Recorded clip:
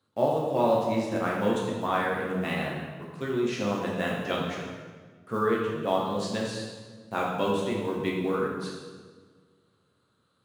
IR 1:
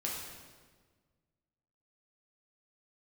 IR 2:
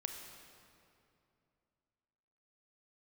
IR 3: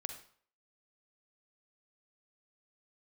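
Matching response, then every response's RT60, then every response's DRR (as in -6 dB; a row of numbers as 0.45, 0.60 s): 1; 1.5, 2.7, 0.55 s; -4.0, 4.0, 6.0 dB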